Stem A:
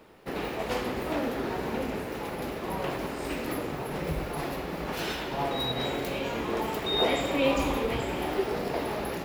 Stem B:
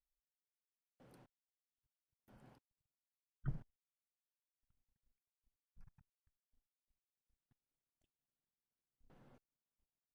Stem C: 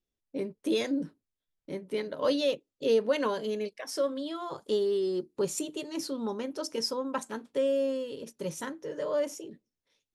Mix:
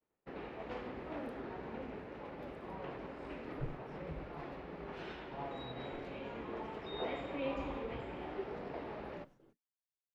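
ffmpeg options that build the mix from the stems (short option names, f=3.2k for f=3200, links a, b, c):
-filter_complex "[0:a]lowpass=2.6k,volume=-13dB[a];[1:a]adelay=150,volume=0dB[b];[2:a]lowpass=1.4k,acompressor=threshold=-34dB:ratio=6,lowshelf=f=320:g=-7.5,volume=-16.5dB[c];[a][b][c]amix=inputs=3:normalize=0,agate=range=-33dB:threshold=-55dB:ratio=3:detection=peak"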